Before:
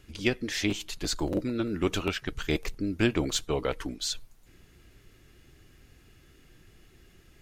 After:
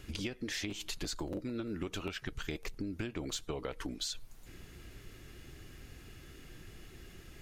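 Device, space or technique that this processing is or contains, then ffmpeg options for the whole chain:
serial compression, leveller first: -af "acompressor=threshold=-29dB:ratio=2.5,acompressor=threshold=-41dB:ratio=6,volume=5dB"

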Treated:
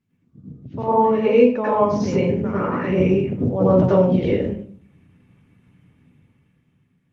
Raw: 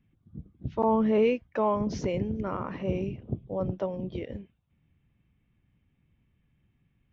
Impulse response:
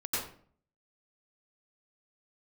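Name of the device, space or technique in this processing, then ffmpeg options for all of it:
far-field microphone of a smart speaker: -filter_complex "[0:a]asettb=1/sr,asplit=3[a][b][c];[a]atrim=end=2.204[d];[b]atrim=start=2.2:end=3.39,asetpts=PTS-STARTPTS,afade=t=in:d=0.004:c=qsin,afade=t=out:st=1.186:d=0.004:c=qsin,equalizer=f=125:t=o:w=1:g=-3,equalizer=f=1k:t=o:w=1:g=-4,equalizer=f=2k:t=o:w=1:g=6,equalizer=f=4k:t=o:w=1:g=-5[e];[c]atrim=start=3.386[f];[d][e]acrossfade=d=0.004:c1=hsin:c2=qsin[g];[g][f]acrossfade=d=0.004:c1=qsin:c2=hsin[h];[1:a]atrim=start_sample=2205[i];[h][i]afir=irnorm=-1:irlink=0,highpass=f=100:w=0.5412,highpass=f=100:w=1.3066,dynaudnorm=f=280:g=9:m=13dB" -ar 48000 -c:a libopus -b:a 24k

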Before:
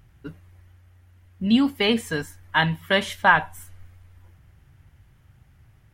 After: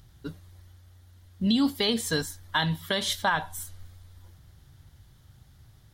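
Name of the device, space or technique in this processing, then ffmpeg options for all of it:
over-bright horn tweeter: -af "highshelf=f=3.1k:t=q:w=3:g=6,alimiter=limit=-14.5dB:level=0:latency=1:release=158"

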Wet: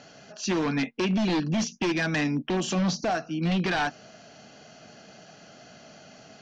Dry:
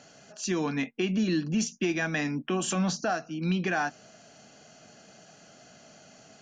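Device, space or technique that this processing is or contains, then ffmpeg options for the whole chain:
synthesiser wavefolder: -filter_complex "[0:a]asettb=1/sr,asplit=3[a][b][c];[a]atrim=end=2.244[d];[b]atrim=start=2.24:end=3.15,asetpts=PTS-STARTPTS,afade=t=in:d=0.004:c=qsin,afade=t=out:st=0.906:d=0.004:c=qsin,equalizer=f=1.5k:w=1.5:g=-8[e];[c]atrim=start=3.146[f];[d][e]acrossfade=d=0.004:c1=hsin:c2=qsin[g];[g][f]acrossfade=d=0.004:c1=qsin:c2=hsin,aeval=exprs='0.0596*(abs(mod(val(0)/0.0596+3,4)-2)-1)':c=same,lowpass=f=5.7k:w=0.5412,lowpass=f=5.7k:w=1.3066,volume=4.5dB"

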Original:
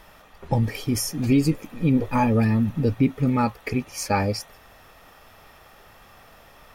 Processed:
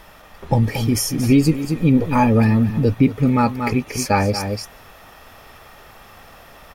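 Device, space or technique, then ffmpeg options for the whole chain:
ducked delay: -filter_complex "[0:a]asplit=3[a][b][c];[b]adelay=232,volume=-4.5dB[d];[c]apad=whole_len=307635[e];[d][e]sidechaincompress=threshold=-30dB:ratio=8:attack=22:release=217[f];[a][f]amix=inputs=2:normalize=0,volume=5dB"

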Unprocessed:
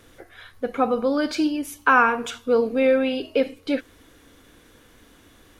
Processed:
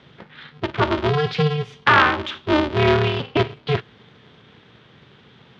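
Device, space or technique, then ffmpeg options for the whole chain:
ring modulator pedal into a guitar cabinet: -af "aeval=exprs='val(0)*sgn(sin(2*PI*150*n/s))':c=same,highpass=83,equalizer=f=120:t=q:w=4:g=5,equalizer=f=220:t=q:w=4:g=3,equalizer=f=650:t=q:w=4:g=-6,equalizer=f=3.3k:t=q:w=4:g=5,lowpass=f=4.1k:w=0.5412,lowpass=f=4.1k:w=1.3066,volume=2.5dB"

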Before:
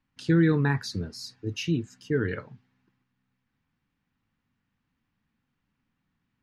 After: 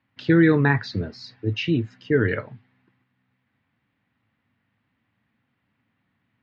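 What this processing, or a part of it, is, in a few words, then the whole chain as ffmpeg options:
guitar cabinet: -af "highpass=97,equalizer=f=110:t=q:w=4:g=6,equalizer=f=160:t=q:w=4:g=-5,equalizer=f=630:t=q:w=4:g=7,equalizer=f=2k:t=q:w=4:g=5,lowpass=f=4k:w=0.5412,lowpass=f=4k:w=1.3066,volume=6dB"

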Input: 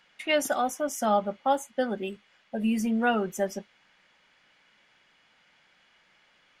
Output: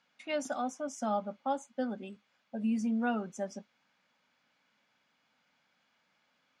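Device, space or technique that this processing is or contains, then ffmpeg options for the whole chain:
car door speaker: -af "highpass=95,equalizer=f=250:t=q:w=4:g=7,equalizer=f=370:t=q:w=4:g=-7,equalizer=f=1.9k:t=q:w=4:g=-7,equalizer=f=3k:t=q:w=4:g=-6,lowpass=f=7.9k:w=0.5412,lowpass=f=7.9k:w=1.3066,volume=-8dB"

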